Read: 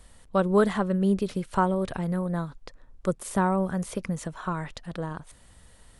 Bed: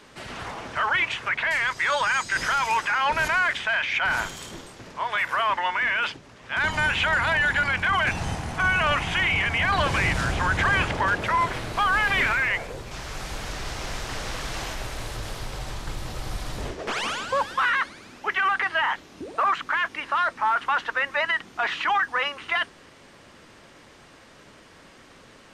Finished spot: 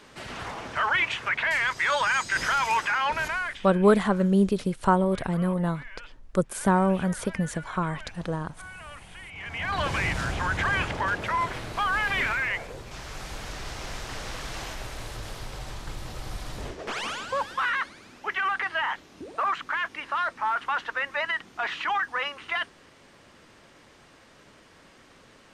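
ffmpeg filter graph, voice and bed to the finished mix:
-filter_complex "[0:a]adelay=3300,volume=2.5dB[a];[1:a]volume=16.5dB,afade=t=out:st=2.85:d=0.93:silence=0.0944061,afade=t=in:st=9.32:d=0.55:silence=0.133352[b];[a][b]amix=inputs=2:normalize=0"

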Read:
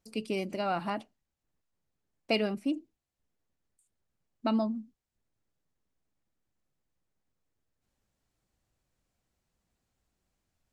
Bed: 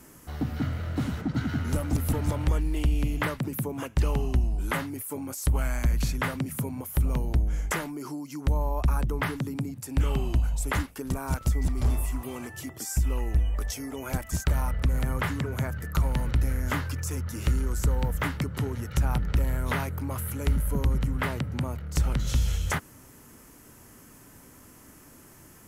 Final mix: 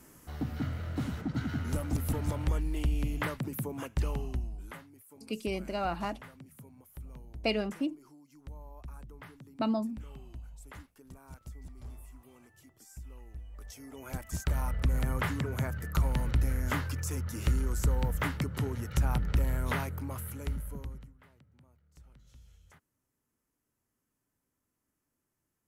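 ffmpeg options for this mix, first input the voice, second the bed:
-filter_complex "[0:a]adelay=5150,volume=-1.5dB[a];[1:a]volume=13dB,afade=t=out:st=3.85:d=0.98:silence=0.158489,afade=t=in:st=13.48:d=1.44:silence=0.125893,afade=t=out:st=19.64:d=1.5:silence=0.0354813[b];[a][b]amix=inputs=2:normalize=0"

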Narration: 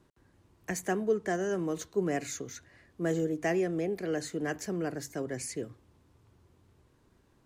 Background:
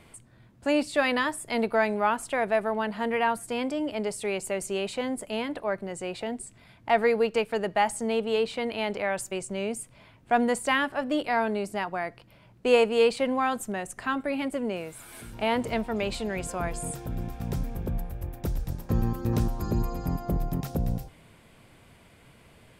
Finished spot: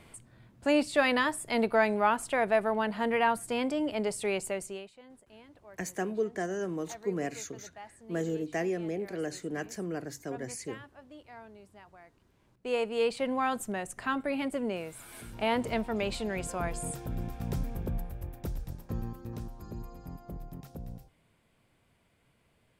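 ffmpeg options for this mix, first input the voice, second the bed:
-filter_complex "[0:a]adelay=5100,volume=-2.5dB[a];[1:a]volume=20dB,afade=t=out:st=4.38:d=0.52:silence=0.0749894,afade=t=in:st=12.29:d=1.28:silence=0.0891251,afade=t=out:st=17.77:d=1.56:silence=0.251189[b];[a][b]amix=inputs=2:normalize=0"

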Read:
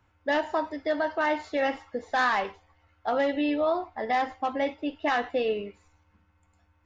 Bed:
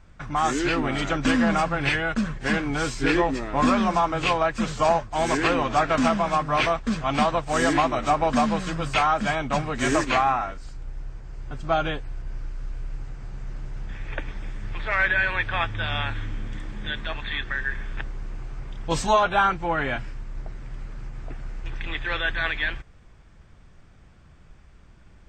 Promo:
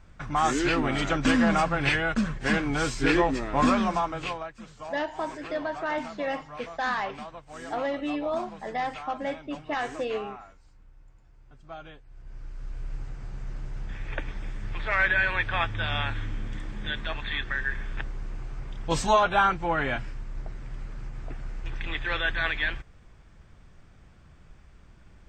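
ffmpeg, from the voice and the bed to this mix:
-filter_complex "[0:a]adelay=4650,volume=-4dB[a];[1:a]volume=16.5dB,afade=t=out:st=3.59:d=0.95:silence=0.125893,afade=t=in:st=12.06:d=0.89:silence=0.133352[b];[a][b]amix=inputs=2:normalize=0"

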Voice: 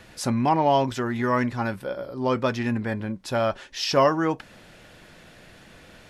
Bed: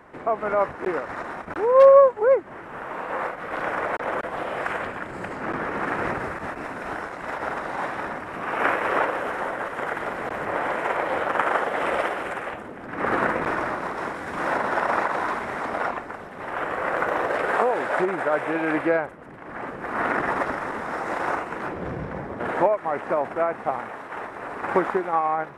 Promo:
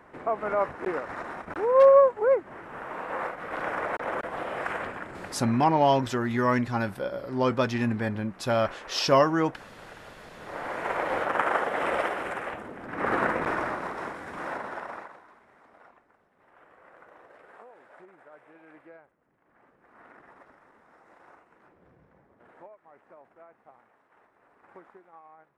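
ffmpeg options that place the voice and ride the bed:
-filter_complex "[0:a]adelay=5150,volume=-1dB[a];[1:a]volume=12.5dB,afade=t=out:st=4.86:d=0.98:silence=0.16788,afade=t=in:st=10.35:d=0.71:silence=0.149624,afade=t=out:st=13.59:d=1.63:silence=0.0501187[b];[a][b]amix=inputs=2:normalize=0"

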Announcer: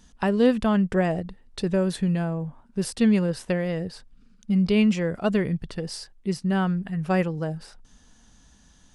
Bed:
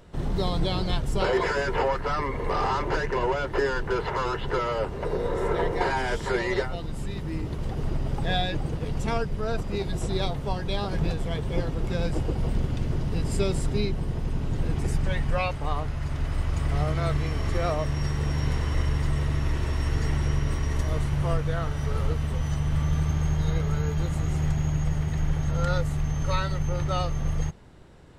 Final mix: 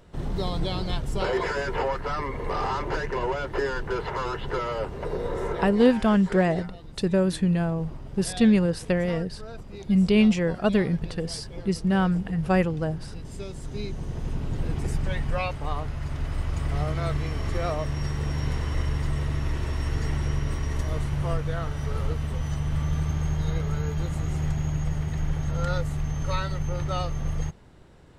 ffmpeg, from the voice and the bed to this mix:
-filter_complex "[0:a]adelay=5400,volume=1dB[a];[1:a]volume=8dB,afade=t=out:st=5.39:d=0.46:silence=0.334965,afade=t=in:st=13.56:d=0.75:silence=0.316228[b];[a][b]amix=inputs=2:normalize=0"

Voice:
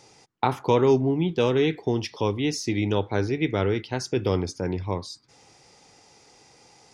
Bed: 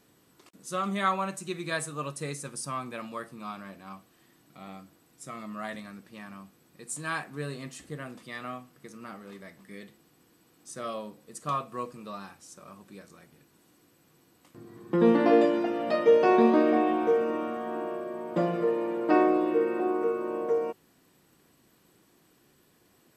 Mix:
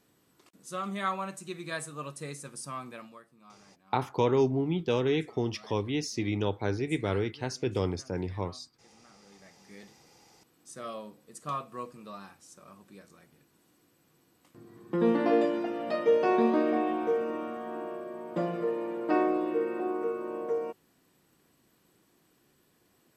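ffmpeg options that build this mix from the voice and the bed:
-filter_complex "[0:a]adelay=3500,volume=-5.5dB[a];[1:a]volume=8.5dB,afade=t=out:st=2.89:d=0.33:silence=0.237137,afade=t=in:st=9.14:d=0.77:silence=0.223872[b];[a][b]amix=inputs=2:normalize=0"

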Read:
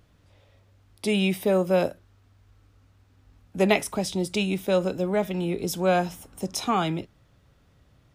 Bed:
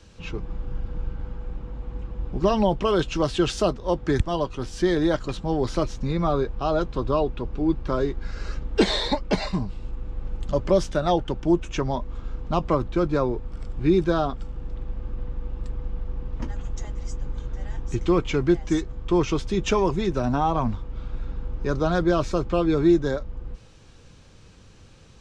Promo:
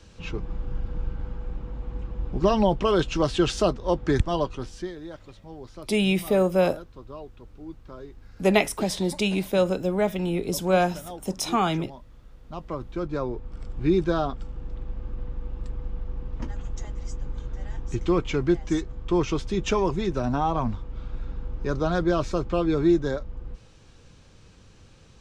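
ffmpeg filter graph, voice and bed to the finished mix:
-filter_complex "[0:a]adelay=4850,volume=1dB[a];[1:a]volume=15.5dB,afade=t=out:st=4.43:d=0.5:silence=0.133352,afade=t=in:st=12.37:d=1.45:silence=0.16788[b];[a][b]amix=inputs=2:normalize=0"

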